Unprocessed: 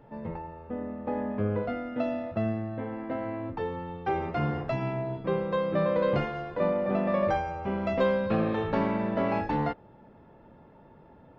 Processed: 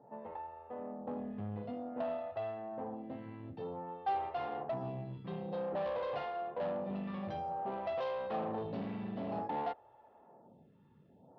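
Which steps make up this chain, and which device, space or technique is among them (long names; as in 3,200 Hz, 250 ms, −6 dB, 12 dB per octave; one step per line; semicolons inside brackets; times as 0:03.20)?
vibe pedal into a guitar amplifier (phaser with staggered stages 0.53 Hz; tube saturation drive 31 dB, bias 0.45; loudspeaker in its box 110–4,500 Hz, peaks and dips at 310 Hz −5 dB, 760 Hz +8 dB, 1,500 Hz −6 dB, 2,200 Hz −7 dB)
level −3 dB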